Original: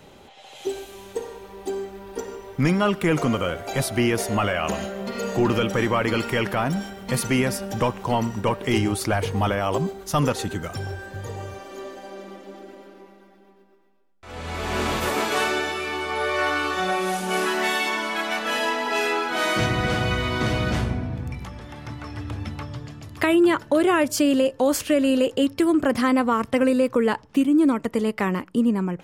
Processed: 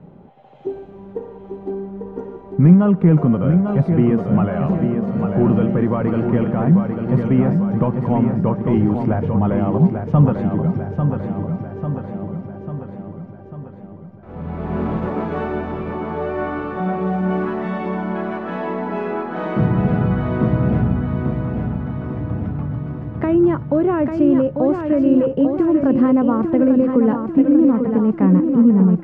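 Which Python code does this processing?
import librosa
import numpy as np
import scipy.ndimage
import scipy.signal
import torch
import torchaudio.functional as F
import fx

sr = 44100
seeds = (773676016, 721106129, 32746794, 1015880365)

y = scipy.signal.sosfilt(scipy.signal.butter(2, 1000.0, 'lowpass', fs=sr, output='sos'), x)
y = fx.peak_eq(y, sr, hz=170.0, db=14.5, octaves=0.96)
y = fx.echo_feedback(y, sr, ms=845, feedback_pct=56, wet_db=-6)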